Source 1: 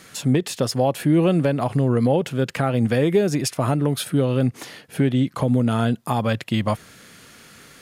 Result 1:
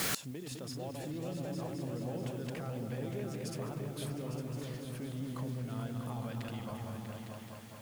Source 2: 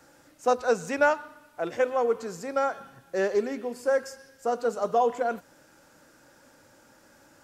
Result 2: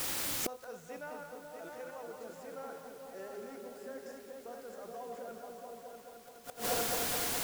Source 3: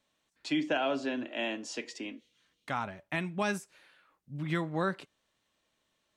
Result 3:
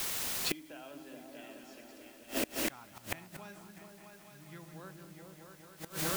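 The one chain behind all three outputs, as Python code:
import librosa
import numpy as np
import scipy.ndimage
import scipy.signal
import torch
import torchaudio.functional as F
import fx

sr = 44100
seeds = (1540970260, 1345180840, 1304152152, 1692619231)

p1 = fx.reverse_delay_fb(x, sr, ms=103, feedback_pct=53, wet_db=-9.0)
p2 = fx.over_compress(p1, sr, threshold_db=-28.0, ratio=-1.0)
p3 = p1 + (p2 * librosa.db_to_amplitude(0.0))
p4 = fx.vibrato(p3, sr, rate_hz=2.2, depth_cents=20.0)
p5 = fx.quant_dither(p4, sr, seeds[0], bits=6, dither='triangular')
p6 = fx.echo_opening(p5, sr, ms=214, hz=200, octaves=2, feedback_pct=70, wet_db=0)
y = fx.gate_flip(p6, sr, shuts_db=-19.0, range_db=-26)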